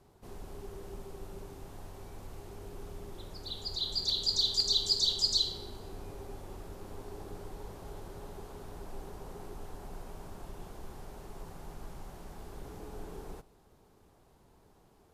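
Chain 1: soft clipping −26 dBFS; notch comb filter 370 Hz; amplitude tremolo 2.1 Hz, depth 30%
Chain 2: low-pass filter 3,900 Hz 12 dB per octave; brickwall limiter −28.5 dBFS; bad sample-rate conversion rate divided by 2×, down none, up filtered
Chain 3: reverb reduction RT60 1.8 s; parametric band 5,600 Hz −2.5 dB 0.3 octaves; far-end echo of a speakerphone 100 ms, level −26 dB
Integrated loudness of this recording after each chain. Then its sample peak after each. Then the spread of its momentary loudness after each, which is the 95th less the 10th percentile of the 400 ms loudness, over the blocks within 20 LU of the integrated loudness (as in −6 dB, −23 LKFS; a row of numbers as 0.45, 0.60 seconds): −40.0, −42.5, −30.5 LKFS; −23.5, −28.5, −15.5 dBFS; 20, 14, 22 LU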